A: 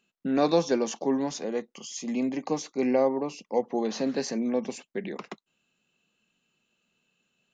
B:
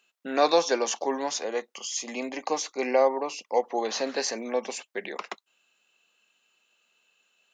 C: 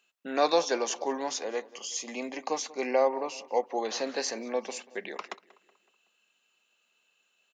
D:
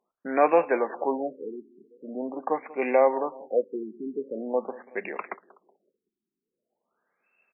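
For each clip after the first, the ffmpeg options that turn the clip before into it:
-af "highpass=610,volume=2.11"
-filter_complex "[0:a]asplit=2[s0][s1];[s1]adelay=187,lowpass=f=3000:p=1,volume=0.106,asplit=2[s2][s3];[s3]adelay=187,lowpass=f=3000:p=1,volume=0.5,asplit=2[s4][s5];[s5]adelay=187,lowpass=f=3000:p=1,volume=0.5,asplit=2[s6][s7];[s7]adelay=187,lowpass=f=3000:p=1,volume=0.5[s8];[s0][s2][s4][s6][s8]amix=inputs=5:normalize=0,volume=0.708"
-af "afftfilt=real='re*lt(b*sr/1024,400*pow(2800/400,0.5+0.5*sin(2*PI*0.44*pts/sr)))':imag='im*lt(b*sr/1024,400*pow(2800/400,0.5+0.5*sin(2*PI*0.44*pts/sr)))':win_size=1024:overlap=0.75,volume=1.68"

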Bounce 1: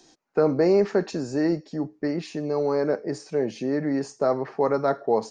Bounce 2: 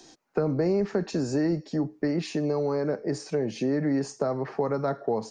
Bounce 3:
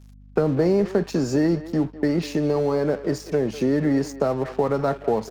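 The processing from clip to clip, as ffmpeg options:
-filter_complex "[0:a]acrossover=split=190[s0][s1];[s1]acompressor=threshold=0.0355:ratio=6[s2];[s0][s2]amix=inputs=2:normalize=0,volume=1.58"
-filter_complex "[0:a]aeval=exprs='sgn(val(0))*max(abs(val(0))-0.00473,0)':c=same,aeval=exprs='val(0)+0.00282*(sin(2*PI*50*n/s)+sin(2*PI*2*50*n/s)/2+sin(2*PI*3*50*n/s)/3+sin(2*PI*4*50*n/s)/4+sin(2*PI*5*50*n/s)/5)':c=same,asplit=2[s0][s1];[s1]adelay=200,highpass=300,lowpass=3400,asoftclip=type=hard:threshold=0.0708,volume=0.2[s2];[s0][s2]amix=inputs=2:normalize=0,volume=1.88"

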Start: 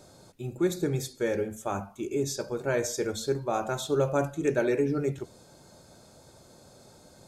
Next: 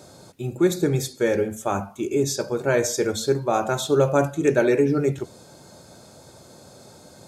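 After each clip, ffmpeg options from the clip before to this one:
-af "highpass=71,volume=2.24"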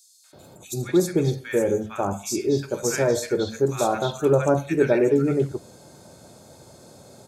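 -filter_complex "[0:a]acrossover=split=1400|4300[s0][s1][s2];[s1]adelay=240[s3];[s0]adelay=330[s4];[s4][s3][s2]amix=inputs=3:normalize=0"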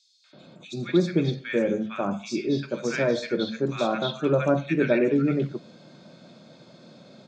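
-af "highpass=f=150:w=0.5412,highpass=f=150:w=1.3066,equalizer=f=160:t=q:w=4:g=4,equalizer=f=220:t=q:w=4:g=4,equalizer=f=420:t=q:w=4:g=-7,equalizer=f=840:t=q:w=4:g=-9,equalizer=f=2400:t=q:w=4:g=4,equalizer=f=3500:t=q:w=4:g=4,lowpass=f=4600:w=0.5412,lowpass=f=4600:w=1.3066"

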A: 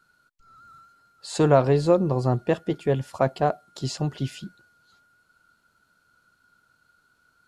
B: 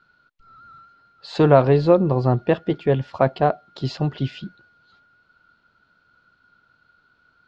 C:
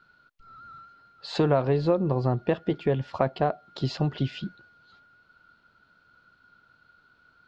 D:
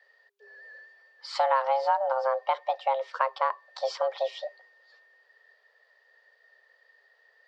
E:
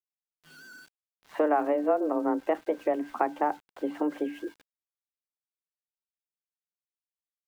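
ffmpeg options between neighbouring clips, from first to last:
-af "lowpass=f=4300:w=0.5412,lowpass=f=4300:w=1.3066,volume=1.58"
-af "acompressor=threshold=0.0708:ratio=2.5"
-af "afreqshift=400,volume=0.794"
-af "bandreject=f=60:t=h:w=6,bandreject=f=120:t=h:w=6,bandreject=f=180:t=h:w=6,bandreject=f=240:t=h:w=6,bandreject=f=300:t=h:w=6,bandreject=f=360:t=h:w=6,bandreject=f=420:t=h:w=6,bandreject=f=480:t=h:w=6,bandreject=f=540:t=h:w=6,highpass=f=370:t=q:w=0.5412,highpass=f=370:t=q:w=1.307,lowpass=f=2700:t=q:w=0.5176,lowpass=f=2700:t=q:w=0.7071,lowpass=f=2700:t=q:w=1.932,afreqshift=-250,aeval=exprs='val(0)*gte(abs(val(0)),0.00335)':c=same"

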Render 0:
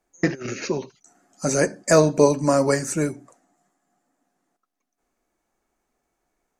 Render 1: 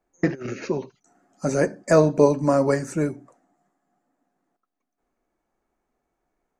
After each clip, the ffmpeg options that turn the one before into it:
-af "highshelf=f=2800:g=-12"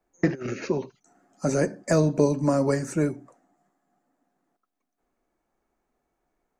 -filter_complex "[0:a]acrossover=split=330|3000[s0][s1][s2];[s1]acompressor=threshold=0.0708:ratio=6[s3];[s0][s3][s2]amix=inputs=3:normalize=0"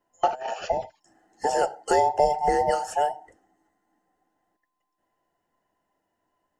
-af "afftfilt=real='real(if(between(b,1,1008),(2*floor((b-1)/48)+1)*48-b,b),0)':imag='imag(if(between(b,1,1008),(2*floor((b-1)/48)+1)*48-b,b),0)*if(between(b,1,1008),-1,1)':win_size=2048:overlap=0.75"

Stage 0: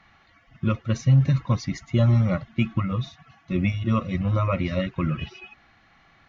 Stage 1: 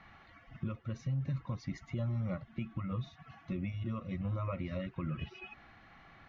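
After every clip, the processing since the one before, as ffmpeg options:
-af "alimiter=limit=0.0794:level=0:latency=1:release=350,lowpass=f=2400:p=1,acompressor=threshold=0.00501:ratio=1.5,volume=1.12"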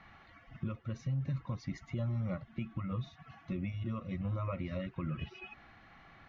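-af anull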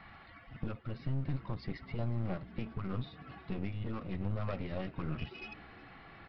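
-filter_complex "[0:a]aresample=11025,aeval=exprs='clip(val(0),-1,0.00335)':c=same,aresample=44100,asplit=6[s0][s1][s2][s3][s4][s5];[s1]adelay=363,afreqshift=64,volume=0.0891[s6];[s2]adelay=726,afreqshift=128,volume=0.0569[s7];[s3]adelay=1089,afreqshift=192,volume=0.0363[s8];[s4]adelay=1452,afreqshift=256,volume=0.0234[s9];[s5]adelay=1815,afreqshift=320,volume=0.015[s10];[s0][s6][s7][s8][s9][s10]amix=inputs=6:normalize=0,volume=1.5"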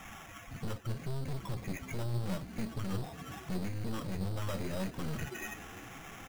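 -af "aresample=16000,asoftclip=type=tanh:threshold=0.015,aresample=44100,flanger=delay=3.8:depth=8:regen=60:speed=0.8:shape=sinusoidal,acrusher=samples=10:mix=1:aa=0.000001,volume=3.16"

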